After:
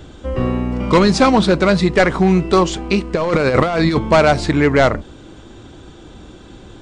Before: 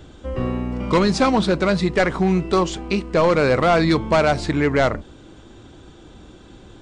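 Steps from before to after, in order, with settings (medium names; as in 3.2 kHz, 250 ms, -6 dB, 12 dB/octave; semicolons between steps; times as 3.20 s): 3.14–3.99 s: compressor with a negative ratio -19 dBFS, ratio -0.5; trim +5 dB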